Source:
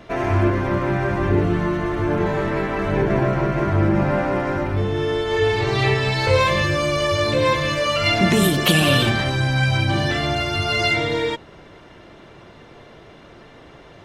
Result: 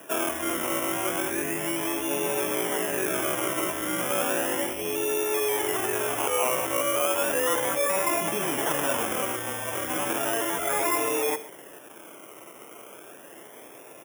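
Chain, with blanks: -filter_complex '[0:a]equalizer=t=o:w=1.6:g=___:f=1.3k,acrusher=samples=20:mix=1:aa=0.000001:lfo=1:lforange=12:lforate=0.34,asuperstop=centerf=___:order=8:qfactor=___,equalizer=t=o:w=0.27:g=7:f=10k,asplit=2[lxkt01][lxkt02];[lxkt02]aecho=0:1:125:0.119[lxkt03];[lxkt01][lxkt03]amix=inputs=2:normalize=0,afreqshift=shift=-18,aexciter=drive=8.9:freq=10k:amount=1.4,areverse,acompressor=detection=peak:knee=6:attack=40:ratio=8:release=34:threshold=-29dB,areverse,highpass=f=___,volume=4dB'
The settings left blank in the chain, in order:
-9, 4300, 2.5, 430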